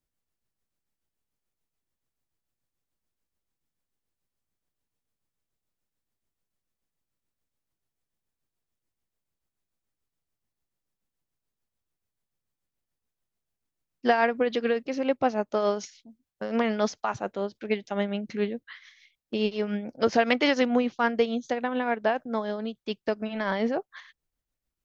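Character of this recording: tremolo triangle 6.9 Hz, depth 55%

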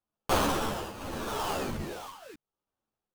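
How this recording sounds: aliases and images of a low sample rate 2.1 kHz, jitter 20%; tremolo triangle 0.8 Hz, depth 85%; a shimmering, thickened sound

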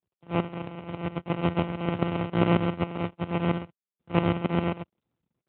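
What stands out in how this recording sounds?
a buzz of ramps at a fixed pitch in blocks of 256 samples; tremolo saw up 7.4 Hz, depth 80%; aliases and images of a low sample rate 1.7 kHz, jitter 0%; AMR-NB

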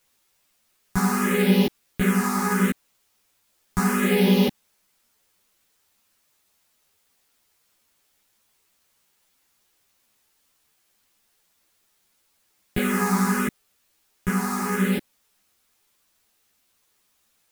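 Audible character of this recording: phasing stages 4, 0.74 Hz, lowest notch 510–1400 Hz; a quantiser's noise floor 12-bit, dither triangular; a shimmering, thickened sound

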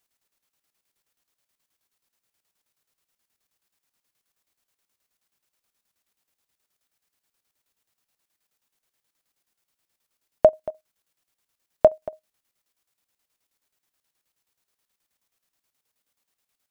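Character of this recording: chopped level 9.4 Hz, depth 65%, duty 60%

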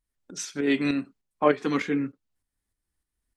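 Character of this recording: tremolo saw up 3.3 Hz, depth 55%

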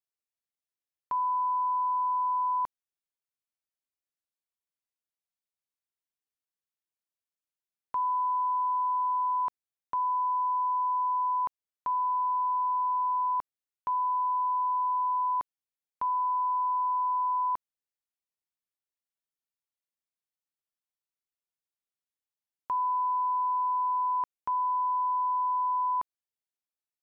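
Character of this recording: noise floor -95 dBFS; spectral tilt -2.5 dB/octave

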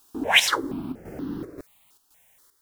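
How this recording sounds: a quantiser's noise floor 12-bit, dither triangular; chopped level 1.9 Hz, depth 60%, duty 75%; notches that jump at a steady rate 4.2 Hz 560–2300 Hz

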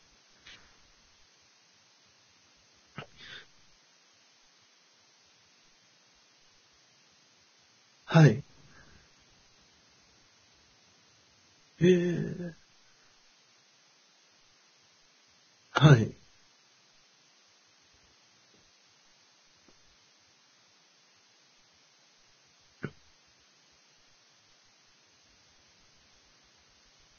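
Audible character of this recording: a quantiser's noise floor 10-bit, dither triangular; Vorbis

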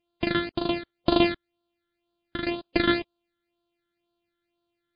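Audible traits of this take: a buzz of ramps at a fixed pitch in blocks of 128 samples; phasing stages 12, 2 Hz, lowest notch 800–2100 Hz; MP3

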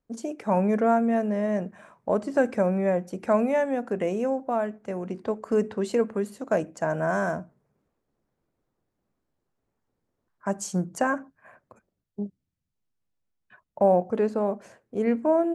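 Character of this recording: noise floor -81 dBFS; spectral tilt -4.0 dB/octave

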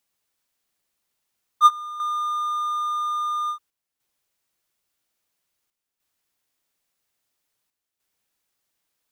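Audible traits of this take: chopped level 0.5 Hz, depth 60%, duty 85%

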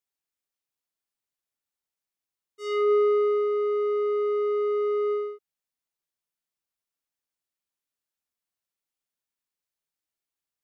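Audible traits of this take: noise floor -90 dBFS; spectral tilt -7.0 dB/octave

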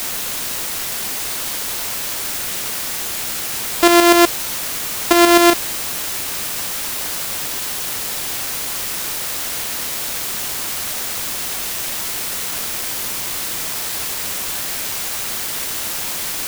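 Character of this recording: a buzz of ramps at a fixed pitch in blocks of 128 samples; tremolo saw up 8 Hz, depth 60%; a quantiser's noise floor 6-bit, dither triangular

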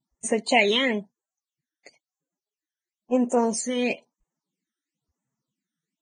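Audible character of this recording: phasing stages 12, 1 Hz, lowest notch 790–4400 Hz; Vorbis

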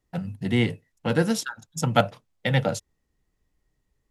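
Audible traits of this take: noise floor -76 dBFS; spectral tilt -5.5 dB/octave

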